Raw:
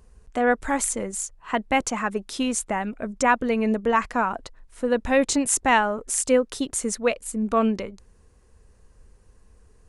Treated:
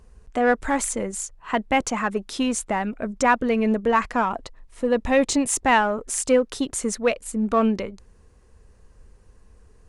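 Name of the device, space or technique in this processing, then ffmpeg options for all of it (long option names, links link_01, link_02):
parallel distortion: -filter_complex "[0:a]asplit=2[link_01][link_02];[link_02]asoftclip=type=hard:threshold=-23dB,volume=-10dB[link_03];[link_01][link_03]amix=inputs=2:normalize=0,asettb=1/sr,asplit=3[link_04][link_05][link_06];[link_04]atrim=end=4.224[link_07];[link_05]atrim=start=4.22:end=5.63,asetpts=PTS-STARTPTS,afade=type=in:duration=0.004:curve=qsin,afade=type=out:start_time=1.406:duration=0.004:curve=qsin,bandreject=frequency=1500:width=7.1[link_08];[link_06]atrim=start=5.626[link_09];[link_07][link_08]acrossfade=duration=0.004:curve1=hsin:curve2=qsin[link_10];[link_10][link_09]acrossfade=duration=0.004:curve1=qsin:curve2=hsin,highshelf=frequency=8500:gain=-7"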